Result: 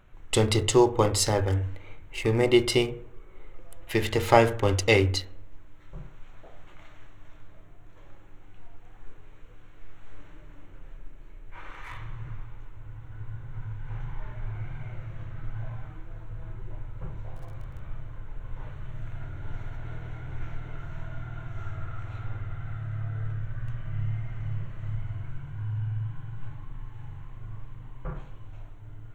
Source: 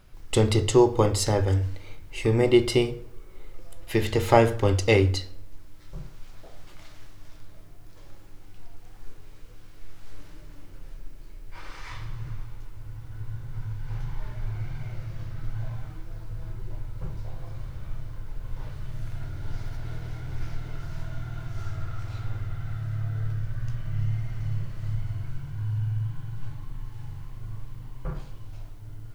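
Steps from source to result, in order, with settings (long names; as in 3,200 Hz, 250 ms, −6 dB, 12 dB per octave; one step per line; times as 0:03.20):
adaptive Wiener filter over 9 samples
0:17.34–0:17.81: surface crackle 100 per second → 31 per second −45 dBFS
tilt shelving filter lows −3 dB, about 720 Hz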